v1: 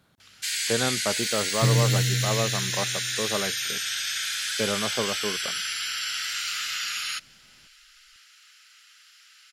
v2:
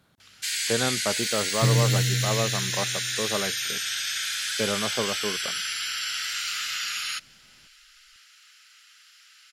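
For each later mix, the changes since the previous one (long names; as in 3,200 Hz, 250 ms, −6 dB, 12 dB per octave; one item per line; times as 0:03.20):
nothing changed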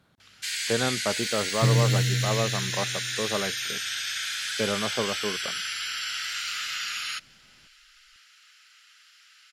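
master: add high-shelf EQ 6,000 Hz −6.5 dB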